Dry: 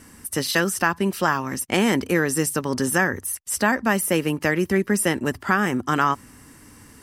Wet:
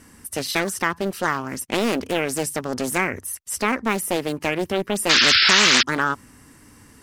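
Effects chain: painted sound noise, 5.09–5.83 s, 1.3–5.4 kHz -14 dBFS; loudspeaker Doppler distortion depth 0.6 ms; trim -1.5 dB

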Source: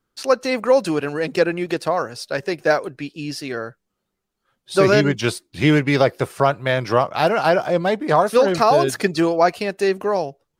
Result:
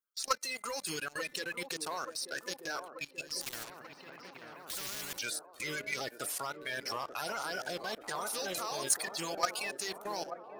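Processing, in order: coarse spectral quantiser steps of 30 dB; pre-emphasis filter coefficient 0.97; de-hum 294.5 Hz, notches 8; level held to a coarse grid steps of 15 dB; waveshaping leveller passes 2; feedback echo behind a band-pass 885 ms, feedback 69%, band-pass 450 Hz, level -6.5 dB; 3.41–5.19 s: spectrum-flattening compressor 4:1

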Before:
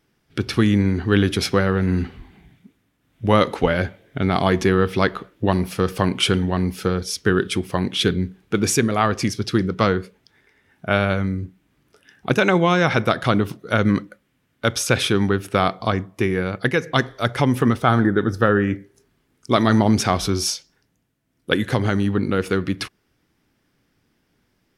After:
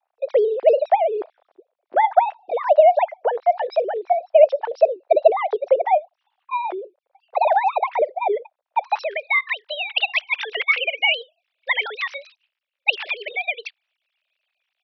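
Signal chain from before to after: formants replaced by sine waves; band-pass sweep 410 Hz -> 1.6 kHz, 14.54–15.84 s; wide varispeed 1.67×; trim +5 dB

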